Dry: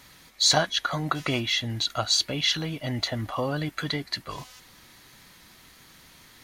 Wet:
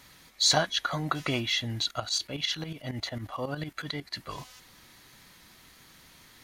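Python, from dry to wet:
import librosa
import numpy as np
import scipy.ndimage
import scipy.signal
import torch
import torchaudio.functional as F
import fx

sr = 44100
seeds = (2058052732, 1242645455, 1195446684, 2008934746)

y = fx.tremolo_shape(x, sr, shape='saw_up', hz=11.0, depth_pct=75, at=(1.89, 4.17), fade=0.02)
y = y * 10.0 ** (-2.5 / 20.0)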